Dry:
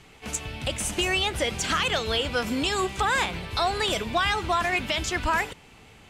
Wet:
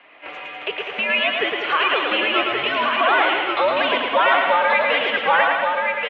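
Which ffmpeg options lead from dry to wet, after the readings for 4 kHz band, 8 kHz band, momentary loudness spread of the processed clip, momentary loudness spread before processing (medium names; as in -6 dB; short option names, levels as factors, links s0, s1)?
+4.0 dB, under -30 dB, 10 LU, 6 LU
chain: -filter_complex "[0:a]asplit=2[s0][s1];[s1]aecho=0:1:110|198|268.4|324.7|369.8:0.631|0.398|0.251|0.158|0.1[s2];[s0][s2]amix=inputs=2:normalize=0,highpass=f=570:t=q:w=0.5412,highpass=f=570:t=q:w=1.307,lowpass=f=3100:t=q:w=0.5176,lowpass=f=3100:t=q:w=0.7071,lowpass=f=3100:t=q:w=1.932,afreqshift=-140,asplit=2[s3][s4];[s4]aecho=0:1:1129:0.668[s5];[s3][s5]amix=inputs=2:normalize=0,volume=2"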